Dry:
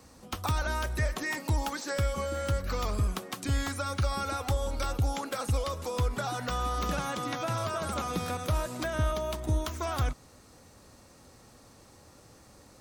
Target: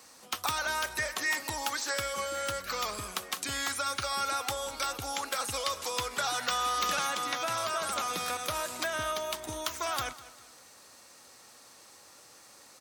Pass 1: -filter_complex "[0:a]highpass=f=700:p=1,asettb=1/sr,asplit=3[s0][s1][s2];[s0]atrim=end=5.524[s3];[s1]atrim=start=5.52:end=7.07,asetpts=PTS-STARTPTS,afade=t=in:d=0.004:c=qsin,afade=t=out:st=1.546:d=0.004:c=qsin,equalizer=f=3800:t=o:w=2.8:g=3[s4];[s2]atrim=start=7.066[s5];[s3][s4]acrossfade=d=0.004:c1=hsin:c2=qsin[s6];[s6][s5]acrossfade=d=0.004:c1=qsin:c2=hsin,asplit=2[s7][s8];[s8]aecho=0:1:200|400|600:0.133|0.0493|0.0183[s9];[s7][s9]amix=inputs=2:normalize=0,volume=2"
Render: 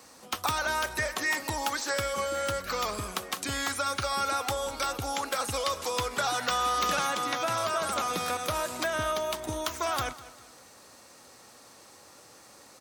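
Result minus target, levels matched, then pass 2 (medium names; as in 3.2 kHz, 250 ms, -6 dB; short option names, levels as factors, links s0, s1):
500 Hz band +3.0 dB
-filter_complex "[0:a]highpass=f=1500:p=1,asettb=1/sr,asplit=3[s0][s1][s2];[s0]atrim=end=5.524[s3];[s1]atrim=start=5.52:end=7.07,asetpts=PTS-STARTPTS,afade=t=in:d=0.004:c=qsin,afade=t=out:st=1.546:d=0.004:c=qsin,equalizer=f=3800:t=o:w=2.8:g=3[s4];[s2]atrim=start=7.066[s5];[s3][s4]acrossfade=d=0.004:c1=hsin:c2=qsin[s6];[s6][s5]acrossfade=d=0.004:c1=qsin:c2=hsin,asplit=2[s7][s8];[s8]aecho=0:1:200|400|600:0.133|0.0493|0.0183[s9];[s7][s9]amix=inputs=2:normalize=0,volume=2"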